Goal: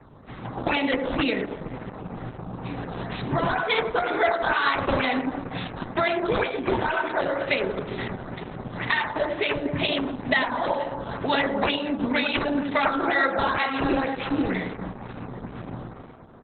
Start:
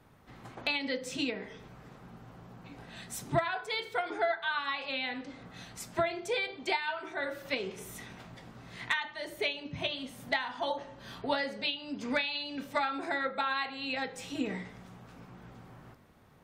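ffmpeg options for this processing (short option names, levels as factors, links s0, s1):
-filter_complex "[0:a]dynaudnorm=f=140:g=7:m=1.58,asplit=2[s0][s1];[s1]alimiter=limit=0.0891:level=0:latency=1:release=26,volume=1.26[s2];[s0][s2]amix=inputs=2:normalize=0,acrossover=split=1400|5900[s3][s4][s5];[s3]acompressor=threshold=0.0316:ratio=4[s6];[s4]acompressor=threshold=0.0501:ratio=4[s7];[s5]acompressor=threshold=0.00398:ratio=4[s8];[s6][s7][s8]amix=inputs=3:normalize=0,acrossover=split=150|1500[s9][s10][s11];[s9]acrusher=bits=5:mode=log:mix=0:aa=0.000001[s12];[s10]aecho=1:1:100|250|475|812.5|1319:0.631|0.398|0.251|0.158|0.1[s13];[s11]acrusher=samples=11:mix=1:aa=0.000001:lfo=1:lforange=17.6:lforate=2.1[s14];[s12][s13][s14]amix=inputs=3:normalize=0,volume=1.88" -ar 48000 -c:a libopus -b:a 8k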